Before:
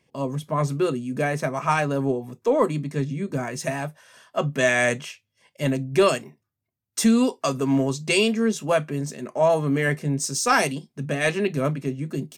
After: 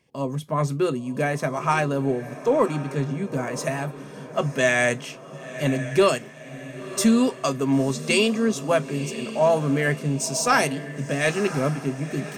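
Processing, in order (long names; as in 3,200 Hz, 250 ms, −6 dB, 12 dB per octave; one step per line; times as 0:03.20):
feedback delay with all-pass diffusion 1,009 ms, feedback 43%, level −13 dB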